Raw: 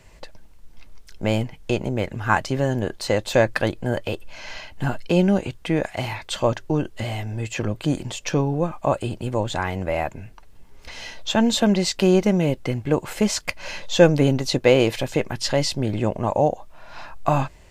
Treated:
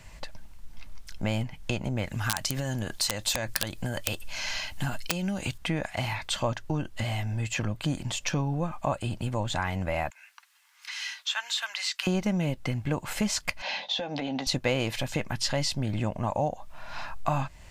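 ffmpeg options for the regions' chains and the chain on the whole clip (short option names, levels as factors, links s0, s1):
-filter_complex "[0:a]asettb=1/sr,asplit=3[s0][s1][s2];[s0]atrim=end=2.064[s3];[s1]atrim=start=2.06:end=5.58,asetpts=PTS-STARTPTS,afade=t=in:d=0.004:c=qsin,afade=t=out:st=3.516:d=0.004:c=qsin,acompressor=threshold=0.0891:ratio=12:attack=3.2:release=140:knee=1:detection=peak,aeval=exprs='(mod(5.96*val(0)+1,2)-1)/5.96':c=same,highshelf=f=3600:g=11[s4];[s2]atrim=start=5.576[s5];[s3][s4]acrossfade=d=0.004:c1=hsin:c2=qsin[s6];[s6][s5]acrossfade=d=0.004:c1=qsin:c2=hsin,asettb=1/sr,asplit=3[s7][s8][s9];[s7]atrim=end=10.104[s10];[s8]atrim=start=10.1:end=12.07,asetpts=PTS-STARTPTS,afade=t=in:d=0.004:c=qsin,afade=t=out:st=1.966:d=0.004:c=qsin,highpass=f=1200:w=0.5412,highpass=f=1200:w=1.3066,acrossover=split=4000[s11][s12];[s12]acompressor=threshold=0.0224:ratio=4:attack=1:release=60[s13];[s11][s13]amix=inputs=2:normalize=0[s14];[s9]atrim=start=12.066[s15];[s10][s14]acrossfade=d=0.004:c1=hsin:c2=qsin[s16];[s16][s15]acrossfade=d=0.004:c1=qsin:c2=hsin,asettb=1/sr,asplit=3[s17][s18][s19];[s17]atrim=end=13.624[s20];[s18]atrim=start=13.62:end=14.47,asetpts=PTS-STARTPTS,afade=t=in:d=0.004:c=qsin,afade=t=out:st=0.846:d=0.004:c=qsin,highpass=f=220:w=0.5412,highpass=f=220:w=1.3066,equalizer=f=370:t=q:w=4:g=-6,equalizer=f=770:t=q:w=4:g=10,equalizer=f=1300:t=q:w=4:g=-7,equalizer=f=3600:t=q:w=4:g=6,lowpass=f=4900:w=0.5412,lowpass=f=4900:w=1.3066,acompressor=threshold=0.0631:ratio=10:attack=3.2:release=140:knee=1:detection=peak,asplit=2[s21][s22];[s22]adelay=15,volume=0.282[s23];[s21][s23]amix=inputs=2:normalize=0,atrim=end_sample=37485[s24];[s19]atrim=start=14.466[s25];[s20][s24]acrossfade=d=0.004:c1=hsin:c2=qsin[s26];[s26][s25]acrossfade=d=0.004:c1=qsin:c2=hsin,equalizer=f=410:t=o:w=0.84:g=-10.5,acompressor=threshold=0.0251:ratio=2,volume=1.33"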